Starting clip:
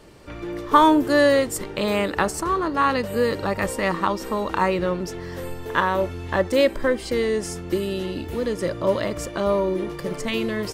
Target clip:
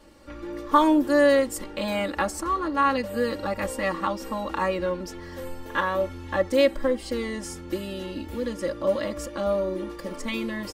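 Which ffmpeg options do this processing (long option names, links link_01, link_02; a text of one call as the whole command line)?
ffmpeg -i in.wav -af "aecho=1:1:3.6:0.94,volume=-7dB" out.wav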